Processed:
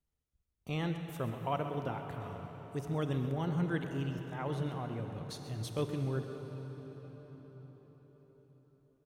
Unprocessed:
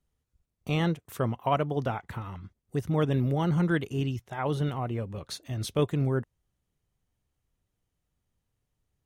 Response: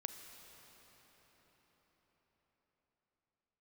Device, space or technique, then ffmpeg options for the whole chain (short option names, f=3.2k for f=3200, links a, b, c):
cathedral: -filter_complex "[1:a]atrim=start_sample=2205[a];[0:a][a]afir=irnorm=-1:irlink=0,asettb=1/sr,asplit=3[b][c][d];[b]atrim=end=2.204[e];[c]atrim=start=2.2:end=3.32,asetpts=PTS-STARTPTS,afade=t=in:d=0.004:c=qsin,afade=t=out:st=1.116:d=0.004:c=qsin,equalizer=f=7k:w=0.61:g=5[f];[d]atrim=start=3.316[g];[e][f]acrossfade=d=0.004:c1=hsin:c2=qsin[h];[h][g]acrossfade=d=0.004:c1=qsin:c2=hsin,aecho=1:1:131:0.211,volume=-5.5dB"